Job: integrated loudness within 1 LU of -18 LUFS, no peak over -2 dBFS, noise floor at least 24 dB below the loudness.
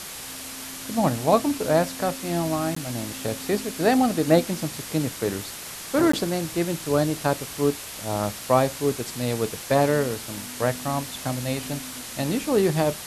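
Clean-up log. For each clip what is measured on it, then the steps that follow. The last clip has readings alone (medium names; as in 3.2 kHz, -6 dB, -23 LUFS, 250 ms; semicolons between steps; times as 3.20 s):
dropouts 2; longest dropout 14 ms; noise floor -37 dBFS; noise floor target -49 dBFS; loudness -25.0 LUFS; peak level -5.0 dBFS; loudness target -18.0 LUFS
-> interpolate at 2.75/6.12 s, 14 ms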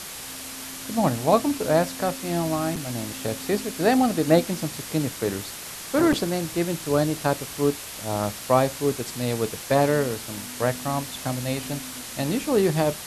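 dropouts 0; noise floor -37 dBFS; noise floor target -49 dBFS
-> noise reduction 12 dB, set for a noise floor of -37 dBFS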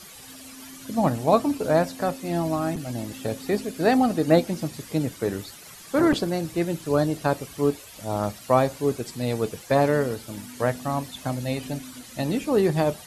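noise floor -45 dBFS; noise floor target -49 dBFS
-> noise reduction 6 dB, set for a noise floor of -45 dBFS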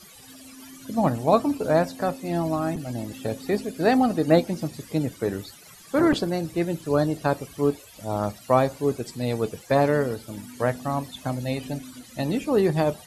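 noise floor -48 dBFS; noise floor target -49 dBFS
-> noise reduction 6 dB, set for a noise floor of -48 dBFS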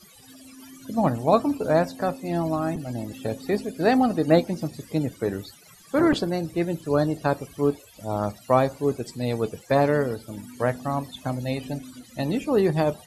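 noise floor -51 dBFS; loudness -25.0 LUFS; peak level -5.0 dBFS; loudness target -18.0 LUFS
-> trim +7 dB; peak limiter -2 dBFS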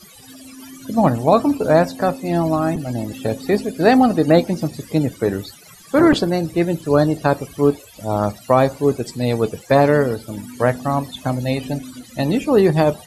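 loudness -18.5 LUFS; peak level -2.0 dBFS; noise floor -44 dBFS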